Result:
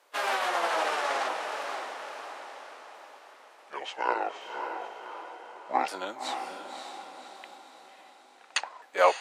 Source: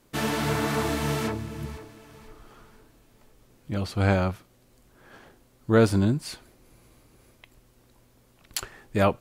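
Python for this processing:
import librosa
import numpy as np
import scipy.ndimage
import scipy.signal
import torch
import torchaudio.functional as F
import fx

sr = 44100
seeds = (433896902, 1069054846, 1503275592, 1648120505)

y = fx.pitch_ramps(x, sr, semitones=-10.5, every_ms=1470)
y = scipy.signal.sosfilt(scipy.signal.butter(4, 580.0, 'highpass', fs=sr, output='sos'), y)
y = fx.high_shelf(y, sr, hz=4400.0, db=-11.5)
y = fx.echo_diffused(y, sr, ms=559, feedback_pct=49, wet_db=-6)
y = y * librosa.db_to_amplitude(5.5)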